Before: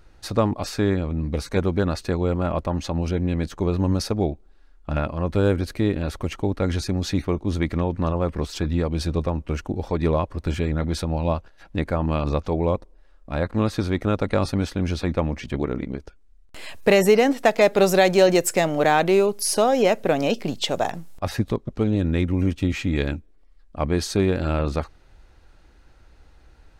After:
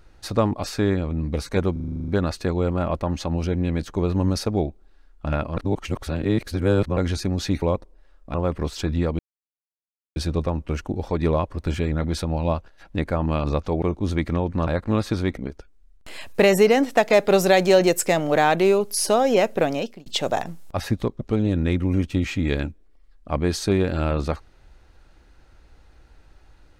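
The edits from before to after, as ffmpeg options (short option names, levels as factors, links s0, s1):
-filter_complex "[0:a]asplit=19[s0][s1][s2][s3][s4][s5][s6][s7][s8][s9][s10][s11][s12][s13][s14][s15][s16][s17][s18];[s0]atrim=end=1.762[s19];[s1]atrim=start=1.718:end=1.762[s20];[s2]atrim=start=1.718:end=1.762[s21];[s3]atrim=start=1.718:end=1.762[s22];[s4]atrim=start=1.718:end=1.762[s23];[s5]atrim=start=1.718:end=1.762[s24];[s6]atrim=start=1.718:end=1.762[s25];[s7]atrim=start=1.718:end=1.762[s26];[s8]atrim=start=1.718:end=1.762[s27];[s9]atrim=start=1.718:end=5.212[s28];[s10]atrim=start=5.208:end=6.612,asetpts=PTS-STARTPTS,areverse[s29];[s11]atrim=start=6.608:end=7.262[s30];[s12]atrim=start=12.618:end=13.342[s31];[s13]atrim=start=8.108:end=8.96,asetpts=PTS-STARTPTS,afade=t=out:st=0.848:d=0.004:c=hsin,apad=pad_dur=0.97[s32];[s14]atrim=start=8.96:end=12.622,asetpts=PTS-STARTPTS,afade=t=in:d=0.004:c=hsin[s33];[s15]atrim=start=7.258:end=8.112[s34];[s16]atrim=start=13.338:end=14.042[s35];[s17]atrim=start=15.848:end=20.54,asetpts=PTS-STARTPTS,afade=t=out:st=4.252:d=0.44[s36];[s18]atrim=start=20.54,asetpts=PTS-STARTPTS,afade=t=in:d=0.004:c=hsin[s37];[s19][s20]acrossfade=d=0.004:c1=hsin:c2=hsin[s38];[s38][s21]acrossfade=d=0.004:c1=hsin:c2=hsin[s39];[s39][s22]acrossfade=d=0.004:c1=hsin:c2=hsin[s40];[s40][s23]acrossfade=d=0.004:c1=hsin:c2=hsin[s41];[s41][s24]acrossfade=d=0.004:c1=hsin:c2=hsin[s42];[s42][s25]acrossfade=d=0.004:c1=hsin:c2=hsin[s43];[s43][s26]acrossfade=d=0.004:c1=hsin:c2=hsin[s44];[s44][s27]acrossfade=d=0.004:c1=hsin:c2=hsin[s45];[s45][s28]acrossfade=d=0.004:c1=hsin:c2=hsin[s46];[s46][s29]acrossfade=d=0.004:c1=hsin:c2=hsin[s47];[s47][s30]acrossfade=d=0.004:c1=hsin:c2=hsin[s48];[s48][s31]acrossfade=d=0.004:c1=hsin:c2=hsin[s49];[s32][s33]concat=n=2:v=0:a=1[s50];[s49][s50]acrossfade=d=0.004:c1=hsin:c2=hsin[s51];[s51][s34]acrossfade=d=0.004:c1=hsin:c2=hsin[s52];[s52][s35]acrossfade=d=0.004:c1=hsin:c2=hsin[s53];[s36][s37]concat=n=2:v=0:a=1[s54];[s53][s54]acrossfade=d=0.004:c1=hsin:c2=hsin"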